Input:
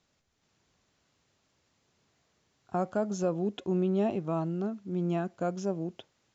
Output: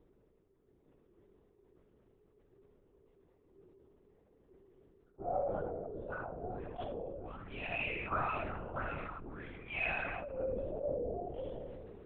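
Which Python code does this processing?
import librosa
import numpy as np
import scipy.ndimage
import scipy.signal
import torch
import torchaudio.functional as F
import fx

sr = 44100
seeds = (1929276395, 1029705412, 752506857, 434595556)

p1 = fx.auto_swell(x, sr, attack_ms=545.0)
p2 = fx.level_steps(p1, sr, step_db=13)
p3 = p1 + (p2 * 10.0 ** (2.0 / 20.0))
p4 = fx.stretch_vocoder_free(p3, sr, factor=1.9)
p5 = fx.auto_wah(p4, sr, base_hz=370.0, top_hz=2400.0, q=9.0, full_db=-28.0, direction='up')
p6 = p5 + fx.room_early_taps(p5, sr, ms=(31, 78), db=(-10.0, -6.0), dry=0)
p7 = fx.room_shoebox(p6, sr, seeds[0], volume_m3=1000.0, walls='mixed', distance_m=0.33)
p8 = fx.lpc_vocoder(p7, sr, seeds[1], excitation='whisper', order=10)
p9 = fx.sustainer(p8, sr, db_per_s=22.0)
y = p9 * 10.0 ** (17.5 / 20.0)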